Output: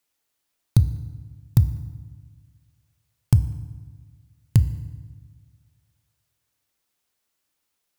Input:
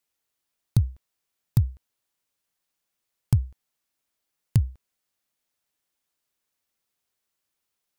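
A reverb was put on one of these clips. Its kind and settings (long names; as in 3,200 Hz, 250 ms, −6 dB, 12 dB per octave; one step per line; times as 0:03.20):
feedback delay network reverb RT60 1.4 s, low-frequency decay 1.3×, high-frequency decay 0.75×, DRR 12 dB
level +4 dB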